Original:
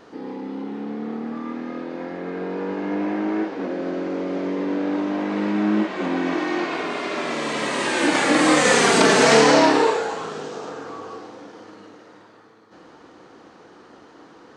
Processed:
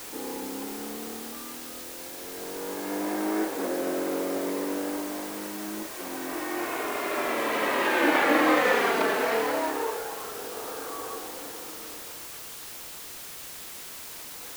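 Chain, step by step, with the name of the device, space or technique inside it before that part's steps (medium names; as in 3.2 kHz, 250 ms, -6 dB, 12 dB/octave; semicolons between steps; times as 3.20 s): shortwave radio (band-pass 330–2600 Hz; tremolo 0.26 Hz, depth 75%; white noise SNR 11 dB)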